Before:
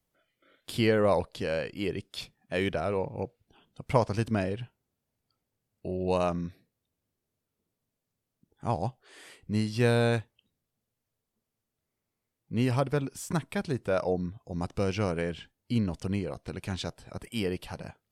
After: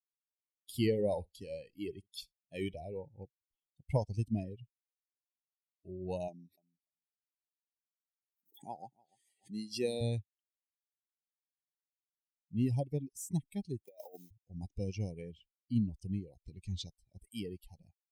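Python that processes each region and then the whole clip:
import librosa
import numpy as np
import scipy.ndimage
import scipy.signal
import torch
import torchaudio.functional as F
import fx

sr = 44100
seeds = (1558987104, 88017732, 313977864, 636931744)

y = fx.chain(x, sr, fx.high_shelf(hz=8000.0, db=5.5),
    fx.room_flutter(wall_m=10.8, rt60_s=0.23), at=(0.74, 2.85))
y = fx.chain(y, sr, fx.highpass(hz=230.0, slope=12),
    fx.echo_feedback(ms=293, feedback_pct=16, wet_db=-13.5),
    fx.pre_swell(db_per_s=120.0), at=(6.28, 10.01))
y = fx.chain(y, sr, fx.delta_hold(step_db=-43.5),
    fx.highpass(hz=380.0, slope=12),
    fx.over_compress(threshold_db=-32.0, ratio=-0.5), at=(13.84, 14.31))
y = fx.chain(y, sr, fx.law_mismatch(coded='mu'),
    fx.lowpass(hz=8300.0, slope=12),
    fx.peak_eq(hz=690.0, db=-11.5, octaves=0.4), at=(16.42, 16.87))
y = fx.bin_expand(y, sr, power=2.0)
y = scipy.signal.sosfilt(scipy.signal.ellip(3, 1.0, 40, [940.0, 1900.0], 'bandstop', fs=sr, output='sos'), y)
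y = fx.peak_eq(y, sr, hz=1400.0, db=-13.0, octaves=1.9)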